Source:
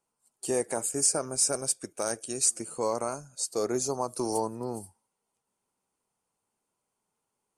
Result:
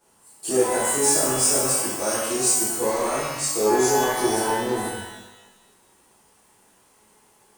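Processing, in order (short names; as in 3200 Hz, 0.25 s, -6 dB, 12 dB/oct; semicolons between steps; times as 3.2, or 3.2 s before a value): power-law curve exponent 0.7; shimmer reverb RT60 1 s, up +12 st, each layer -8 dB, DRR -12 dB; gain -8.5 dB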